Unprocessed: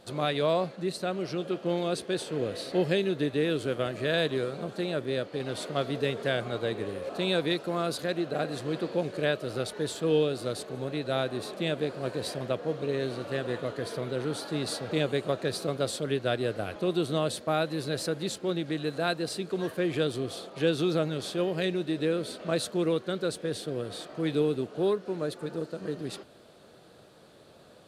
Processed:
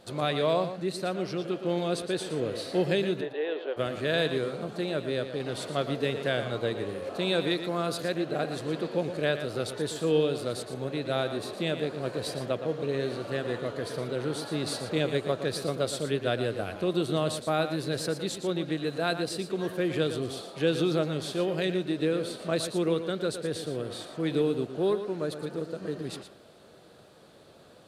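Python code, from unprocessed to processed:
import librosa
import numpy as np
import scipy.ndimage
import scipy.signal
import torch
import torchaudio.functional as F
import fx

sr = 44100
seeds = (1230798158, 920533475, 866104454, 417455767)

p1 = fx.cabinet(x, sr, low_hz=420.0, low_slope=24, high_hz=3000.0, hz=(830.0, 1300.0, 2300.0), db=(5, -8, -7), at=(3.2, 3.76), fade=0.02)
y = p1 + fx.echo_single(p1, sr, ms=116, db=-10.0, dry=0)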